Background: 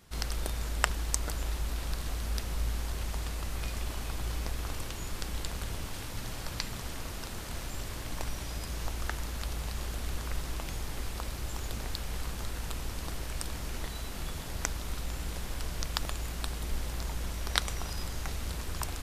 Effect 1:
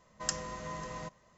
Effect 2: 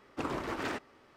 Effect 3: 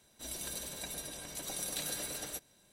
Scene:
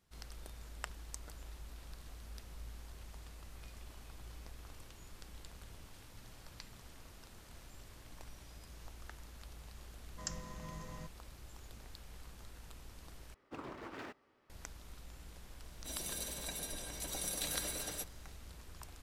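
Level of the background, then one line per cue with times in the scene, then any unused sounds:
background −16.5 dB
0:09.98: mix in 1 −11 dB + bass and treble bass +9 dB, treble +3 dB
0:13.34: overwrite with 2 −11.5 dB + running median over 5 samples
0:15.65: mix in 3 −1 dB

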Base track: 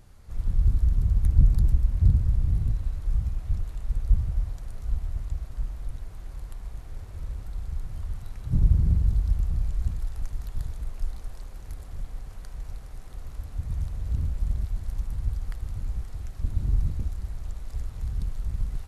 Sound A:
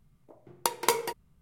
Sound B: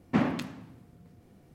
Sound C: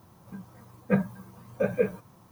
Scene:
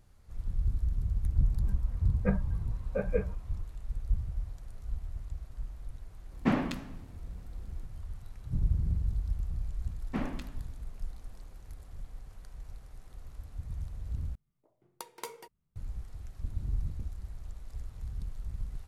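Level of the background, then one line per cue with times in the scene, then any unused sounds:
base track −8.5 dB
0:01.35: mix in C −6 dB + low-pass filter 2,500 Hz
0:06.32: mix in B −1.5 dB
0:10.00: mix in B −9 dB
0:14.35: overwrite with A −16.5 dB

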